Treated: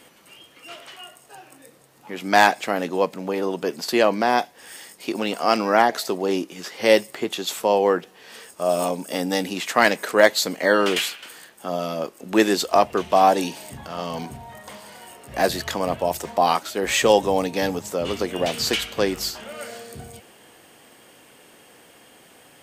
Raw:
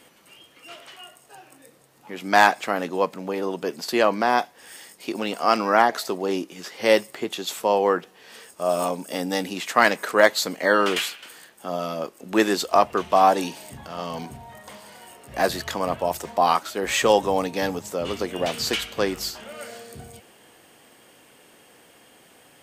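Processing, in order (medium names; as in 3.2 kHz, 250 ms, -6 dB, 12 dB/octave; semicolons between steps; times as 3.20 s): dynamic bell 1.2 kHz, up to -5 dB, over -34 dBFS, Q 1.6; trim +2.5 dB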